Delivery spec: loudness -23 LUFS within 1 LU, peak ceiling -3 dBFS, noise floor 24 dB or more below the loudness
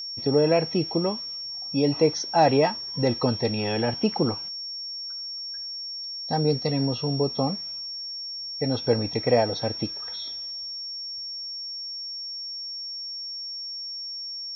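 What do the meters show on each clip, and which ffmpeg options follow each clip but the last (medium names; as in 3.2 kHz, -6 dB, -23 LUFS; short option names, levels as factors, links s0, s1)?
steady tone 5.5 kHz; tone level -32 dBFS; loudness -26.5 LUFS; peak level -7.5 dBFS; loudness target -23.0 LUFS
-> -af "bandreject=f=5500:w=30"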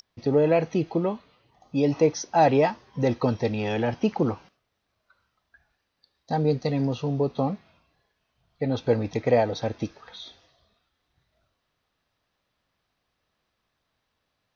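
steady tone not found; loudness -25.0 LUFS; peak level -8.0 dBFS; loudness target -23.0 LUFS
-> -af "volume=1.26"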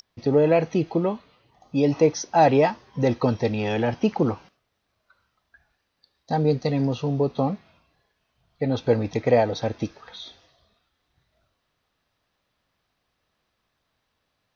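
loudness -23.0 LUFS; peak level -6.0 dBFS; noise floor -76 dBFS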